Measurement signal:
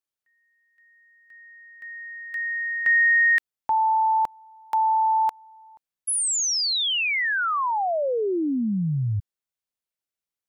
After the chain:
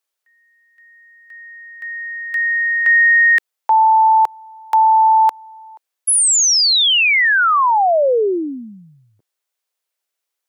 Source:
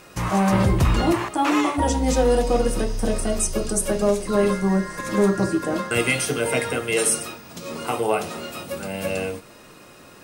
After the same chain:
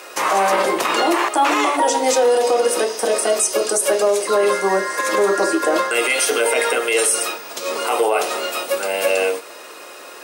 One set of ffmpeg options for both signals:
ffmpeg -i in.wav -af "highpass=frequency=390:width=0.5412,highpass=frequency=390:width=1.3066,alimiter=level_in=17.5dB:limit=-1dB:release=50:level=0:latency=1,volume=-7dB" out.wav

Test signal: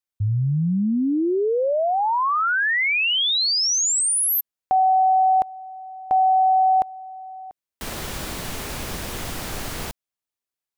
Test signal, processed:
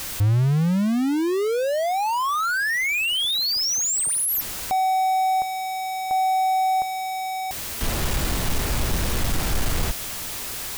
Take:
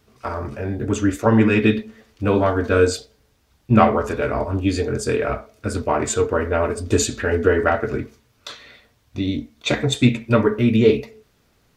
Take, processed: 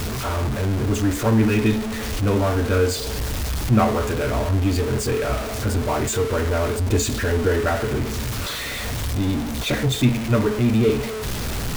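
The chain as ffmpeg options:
ffmpeg -i in.wav -af "aeval=exprs='val(0)+0.5*0.158*sgn(val(0))':channel_layout=same,lowshelf=frequency=120:gain=10.5,volume=-7.5dB" out.wav

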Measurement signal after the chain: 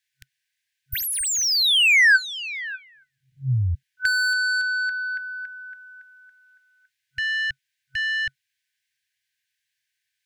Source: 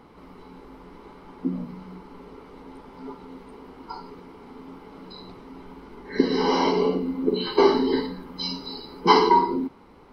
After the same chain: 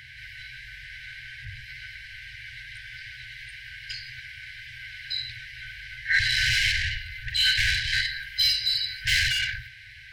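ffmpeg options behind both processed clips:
ffmpeg -i in.wav -filter_complex "[0:a]asplit=2[link_01][link_02];[link_02]highpass=frequency=720:poles=1,volume=31dB,asoftclip=type=tanh:threshold=-3.5dB[link_03];[link_01][link_03]amix=inputs=2:normalize=0,lowpass=frequency=1500:poles=1,volume=-6dB,afftfilt=real='re*(1-between(b*sr/4096,130,1500))':imag='im*(1-between(b*sr/4096,130,1500))':win_size=4096:overlap=0.75,adynamicequalizer=threshold=0.00316:dfrequency=140:dqfactor=1.5:tfrequency=140:tqfactor=1.5:attack=5:release=100:ratio=0.375:range=3:mode=cutabove:tftype=bell" out.wav

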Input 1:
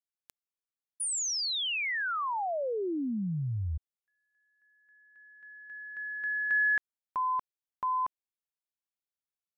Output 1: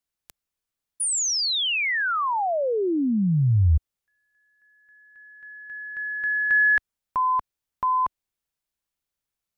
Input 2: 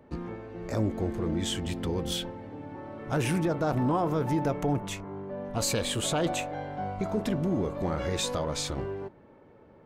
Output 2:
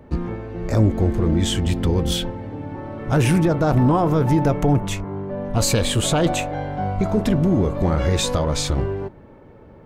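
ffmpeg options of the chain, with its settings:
ffmpeg -i in.wav -af "lowshelf=frequency=110:gain=12,volume=7.5dB" out.wav

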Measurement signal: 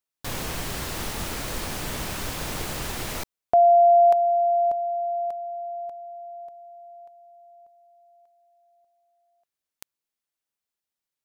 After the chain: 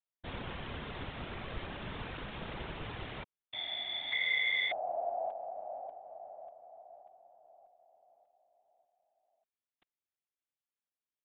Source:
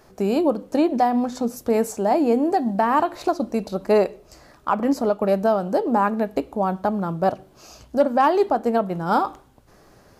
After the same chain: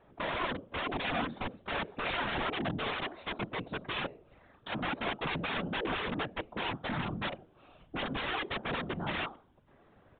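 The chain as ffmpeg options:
ffmpeg -i in.wav -af "aeval=exprs='(mod(8.41*val(0)+1,2)-1)/8.41':channel_layout=same,afftfilt=real='hypot(re,im)*cos(2*PI*random(0))':imag='hypot(re,im)*sin(2*PI*random(1))':win_size=512:overlap=0.75,aresample=8000,aresample=44100,volume=-3.5dB" out.wav

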